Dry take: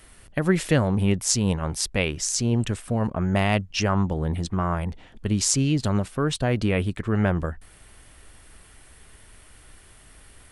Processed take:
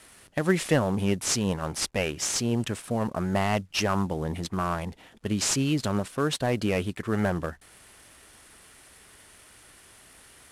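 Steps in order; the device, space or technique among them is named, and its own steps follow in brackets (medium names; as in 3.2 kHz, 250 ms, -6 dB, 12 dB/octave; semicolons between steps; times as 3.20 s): early wireless headset (high-pass 220 Hz 6 dB/octave; CVSD coder 64 kbps)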